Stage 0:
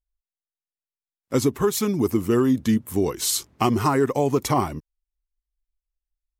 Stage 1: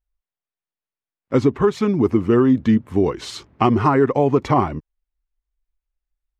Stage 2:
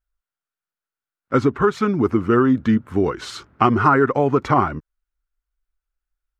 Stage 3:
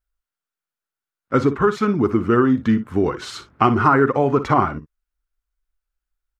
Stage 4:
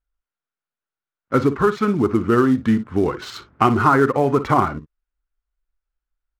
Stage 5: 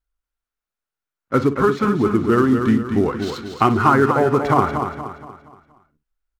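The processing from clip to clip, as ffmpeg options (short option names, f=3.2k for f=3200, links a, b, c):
-af "lowpass=2.5k,volume=4.5dB"
-af "equalizer=f=1.4k:w=3.2:g=12.5,volume=-1.5dB"
-af "aecho=1:1:44|58:0.126|0.188"
-af "acrusher=bits=7:mode=log:mix=0:aa=0.000001,adynamicsmooth=sensitivity=7.5:basefreq=3.6k"
-af "aecho=1:1:236|472|708|944|1180:0.447|0.183|0.0751|0.0308|0.0126"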